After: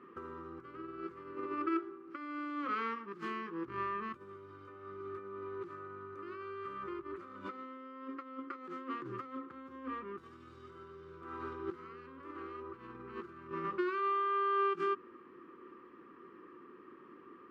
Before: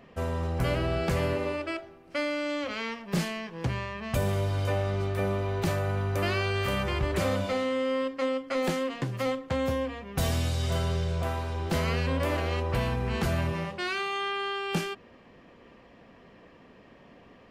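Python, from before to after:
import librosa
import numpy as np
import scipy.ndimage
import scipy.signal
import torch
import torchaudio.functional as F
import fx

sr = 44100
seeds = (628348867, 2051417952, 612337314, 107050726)

y = fx.over_compress(x, sr, threshold_db=-33.0, ratio=-0.5)
y = fx.double_bandpass(y, sr, hz=660.0, octaves=1.8)
y = y * librosa.db_to_amplitude(4.0)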